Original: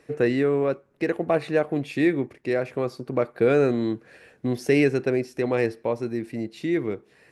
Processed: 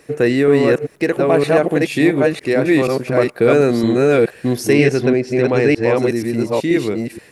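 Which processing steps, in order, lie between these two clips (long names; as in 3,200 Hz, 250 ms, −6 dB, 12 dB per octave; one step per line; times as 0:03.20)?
delay that plays each chunk backwards 479 ms, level −0.5 dB
high-shelf EQ 6,300 Hz +11 dB
in parallel at −2 dB: brickwall limiter −14 dBFS, peak gain reduction 8.5 dB
0:04.73–0:05.97: on the sum: high-frequency loss of the air 80 metres
level +2.5 dB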